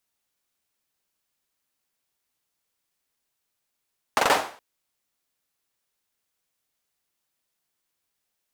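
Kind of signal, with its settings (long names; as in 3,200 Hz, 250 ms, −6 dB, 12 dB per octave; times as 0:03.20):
synth clap length 0.42 s, apart 43 ms, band 780 Hz, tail 0.44 s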